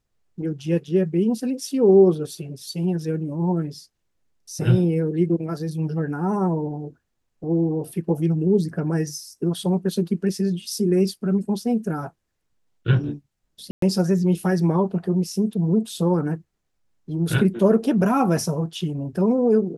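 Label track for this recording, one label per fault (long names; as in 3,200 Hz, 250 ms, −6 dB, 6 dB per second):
13.710000	13.820000	drop-out 113 ms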